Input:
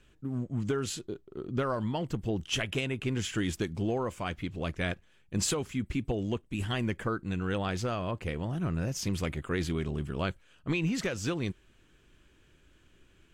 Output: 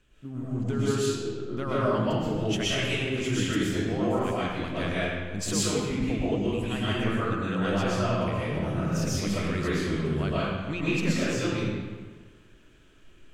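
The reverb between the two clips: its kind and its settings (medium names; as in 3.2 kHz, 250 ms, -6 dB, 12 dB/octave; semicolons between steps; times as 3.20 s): algorithmic reverb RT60 1.5 s, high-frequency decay 0.75×, pre-delay 85 ms, DRR -9 dB; trim -4 dB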